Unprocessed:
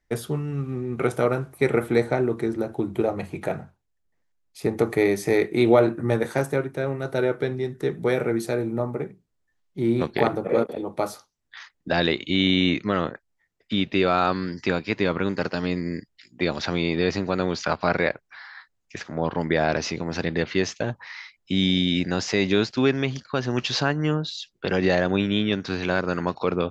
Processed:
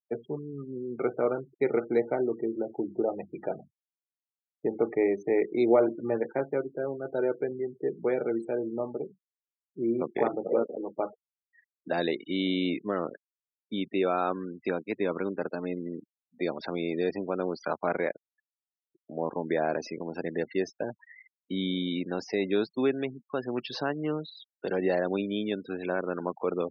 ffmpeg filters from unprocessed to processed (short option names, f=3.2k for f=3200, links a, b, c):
-filter_complex "[0:a]asplit=2[a][b];[a]atrim=end=19.09,asetpts=PTS-STARTPTS,afade=t=out:st=17.96:d=1.13[c];[b]atrim=start=19.09,asetpts=PTS-STARTPTS,afade=t=in:d=0.004:c=hsin[d];[c][d]concat=n=2:v=0:a=1,tiltshelf=f=920:g=5.5,afftfilt=real='re*gte(hypot(re,im),0.0316)':imag='im*gte(hypot(re,im),0.0316)':win_size=1024:overlap=0.75,highpass=310,volume=-6.5dB"